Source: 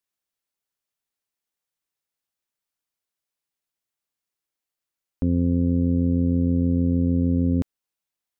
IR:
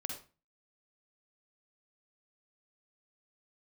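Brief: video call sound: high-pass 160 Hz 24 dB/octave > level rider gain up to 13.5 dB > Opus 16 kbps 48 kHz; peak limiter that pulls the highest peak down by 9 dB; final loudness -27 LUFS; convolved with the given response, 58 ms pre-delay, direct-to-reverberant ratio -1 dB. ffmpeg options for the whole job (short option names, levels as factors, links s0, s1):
-filter_complex "[0:a]alimiter=limit=0.0708:level=0:latency=1,asplit=2[s0][s1];[1:a]atrim=start_sample=2205,adelay=58[s2];[s1][s2]afir=irnorm=-1:irlink=0,volume=1.12[s3];[s0][s3]amix=inputs=2:normalize=0,highpass=f=160:w=0.5412,highpass=f=160:w=1.3066,dynaudnorm=m=4.73" -ar 48000 -c:a libopus -b:a 16k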